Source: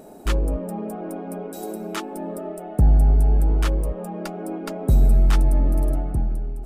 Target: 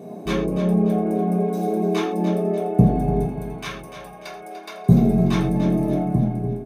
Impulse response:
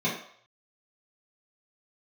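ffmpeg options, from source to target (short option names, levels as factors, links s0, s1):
-filter_complex "[0:a]asettb=1/sr,asplit=3[s0][s1][s2];[s0]atrim=end=3.254[s3];[s1]atrim=start=3.25:end=4.89,asetpts=PTS-STARTPTS,afade=t=in:d=0.004:c=qsin,afade=t=out:st=1.636:d=0.004:c=qsin,highpass=1100[s4];[s2]atrim=start=4.886[s5];[s3][s4]acrossfade=d=0.004:c1=hsin:c2=qsin[s6];[s6][s5]acrossfade=d=0.004:c1=qsin:c2=hsin,aecho=1:1:294|588|882|1176:0.299|0.119|0.0478|0.0191[s7];[1:a]atrim=start_sample=2205,afade=t=out:st=0.19:d=0.01,atrim=end_sample=8820[s8];[s7][s8]afir=irnorm=-1:irlink=0,volume=0.473"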